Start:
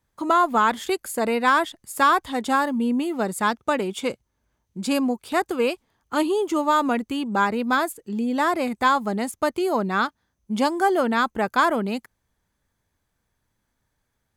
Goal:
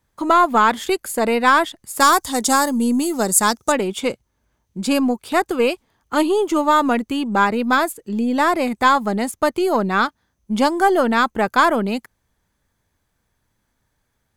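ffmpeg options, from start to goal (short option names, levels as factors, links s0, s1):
-filter_complex "[0:a]aeval=exprs='0.447*(cos(1*acos(clip(val(0)/0.447,-1,1)))-cos(1*PI/2))+0.01*(cos(6*acos(clip(val(0)/0.447,-1,1)))-cos(6*PI/2))':c=same,asettb=1/sr,asplit=3[s0][s1][s2];[s0]atrim=end=2.004[s3];[s1]atrim=start=2:end=3.72,asetpts=PTS-STARTPTS,afade=t=in:d=0.004:c=qsin,afade=t=out:st=1.716:d=0.004:c=qsin,highshelf=f=4200:t=q:w=1.5:g=12.5[s4];[s2]atrim=start=3.716[s5];[s3][s4]acrossfade=d=0.004:c1=hsin:c2=qsin[s6];[s6][s5]acrossfade=d=0.004:c1=qsin:c2=hsin,volume=1.68"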